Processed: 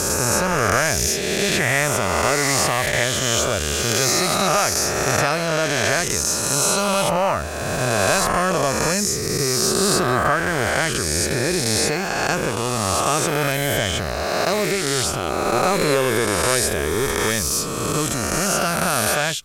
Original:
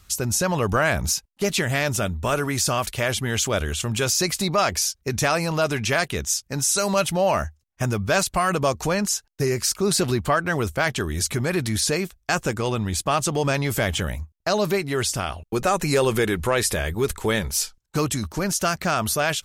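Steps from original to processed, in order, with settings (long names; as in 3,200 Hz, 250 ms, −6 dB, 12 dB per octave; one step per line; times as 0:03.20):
peak hold with a rise ahead of every peak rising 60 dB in 2.70 s
0:01.60–0:03.04: thirty-one-band graphic EQ 400 Hz +4 dB, 800 Hz +6 dB, 2,000 Hz +8 dB
level −2.5 dB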